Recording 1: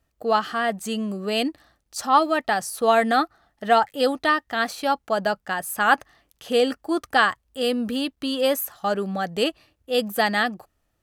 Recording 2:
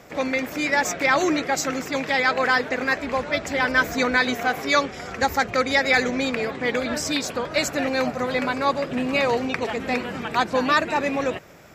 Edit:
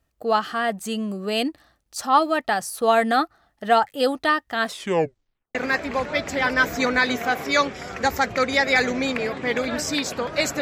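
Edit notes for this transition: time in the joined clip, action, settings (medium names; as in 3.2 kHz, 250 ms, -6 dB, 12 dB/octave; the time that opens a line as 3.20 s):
recording 1
4.60 s: tape stop 0.95 s
5.55 s: go over to recording 2 from 2.73 s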